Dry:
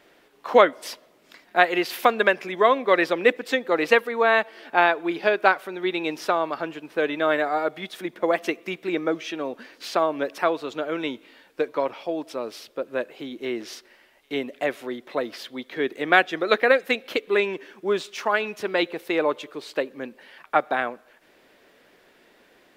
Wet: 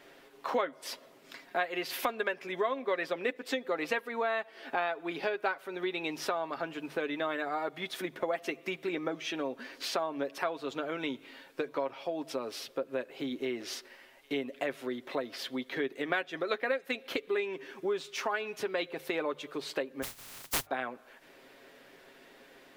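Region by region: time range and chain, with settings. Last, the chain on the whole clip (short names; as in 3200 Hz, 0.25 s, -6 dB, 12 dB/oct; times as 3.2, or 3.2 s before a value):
20.02–20.65 spectral contrast lowered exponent 0.11 + HPF 270 Hz + frequency shift -460 Hz
whole clip: notches 50/100/150 Hz; comb 7.4 ms, depth 45%; compressor 3:1, threshold -33 dBFS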